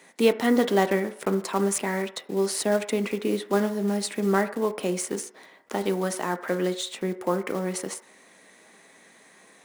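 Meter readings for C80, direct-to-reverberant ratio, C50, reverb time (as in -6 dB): 17.0 dB, 8.5 dB, 13.5 dB, 0.60 s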